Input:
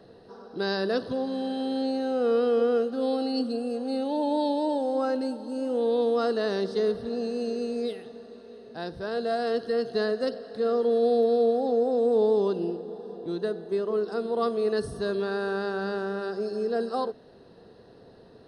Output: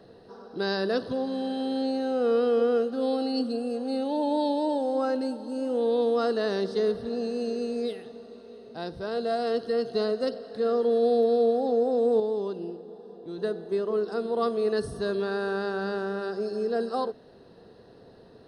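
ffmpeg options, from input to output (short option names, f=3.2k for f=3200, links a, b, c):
-filter_complex "[0:a]asettb=1/sr,asplit=3[a][b][c];[a]atrim=end=8.114[d];[b]atrim=start=8.11:end=10.53,asetpts=PTS-STARTPTS,afade=t=in:d=0.004:c=qsin,afade=t=out:st=2.416:d=0.004:c=qsin,bandreject=f=1.7k:w=9.3[e];[c]atrim=start=10.526[f];[d][e]acrossfade=d=0.004:c1=hsin:c2=qsin[g];[g][f]acrossfade=d=0.004:c1=qsin:c2=hsin,asplit=3[h][i][j];[h]atrim=end=12.202[k];[i]atrim=start=12.198:end=13.382,asetpts=PTS-STARTPTS,volume=-6dB[l];[j]atrim=start=13.378[m];[k][l]acrossfade=d=0.004:c1=hsin:c2=hsin[n];[n][m]acrossfade=d=0.004:c1=hsin:c2=hsin"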